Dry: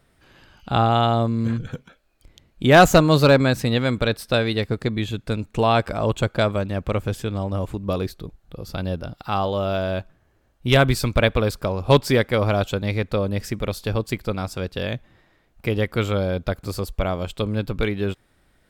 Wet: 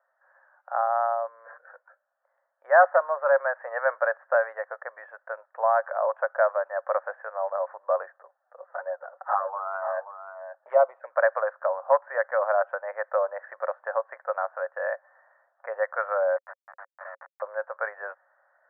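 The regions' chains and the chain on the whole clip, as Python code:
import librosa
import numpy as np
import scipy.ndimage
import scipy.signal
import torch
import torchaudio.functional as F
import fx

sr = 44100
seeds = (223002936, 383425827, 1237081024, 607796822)

y = fx.chain(x, sr, fx.high_shelf(hz=4300.0, db=-8.0),
    fx.env_flanger(rest_ms=10.1, full_db=-16.0),
    fx.echo_single(ms=531, db=-10.0), at=(8.18, 11.12))
y = fx.chain(y, sr, fx.schmitt(flips_db=-24.0),
    fx.tone_stack(knobs='10-0-10'), at=(16.36, 17.42))
y = scipy.signal.sosfilt(scipy.signal.cheby1(5, 1.0, [540.0, 1800.0], 'bandpass', fs=sr, output='sos'), y)
y = fx.rider(y, sr, range_db=4, speed_s=0.5)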